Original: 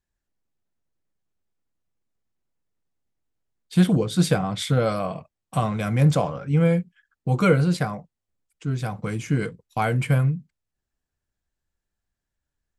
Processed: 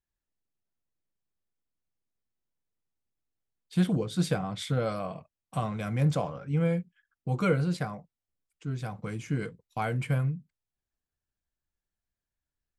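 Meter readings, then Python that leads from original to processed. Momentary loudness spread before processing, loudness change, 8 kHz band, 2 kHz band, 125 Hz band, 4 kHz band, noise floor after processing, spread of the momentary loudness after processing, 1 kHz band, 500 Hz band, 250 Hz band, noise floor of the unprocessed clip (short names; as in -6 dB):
11 LU, -7.5 dB, -9.0 dB, -7.5 dB, -7.5 dB, -8.0 dB, under -85 dBFS, 11 LU, -7.5 dB, -7.5 dB, -7.5 dB, -85 dBFS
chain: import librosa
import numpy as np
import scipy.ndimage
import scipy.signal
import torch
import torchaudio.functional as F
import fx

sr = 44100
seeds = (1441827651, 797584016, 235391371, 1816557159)

y = fx.high_shelf(x, sr, hz=10000.0, db=-4.5)
y = F.gain(torch.from_numpy(y), -7.5).numpy()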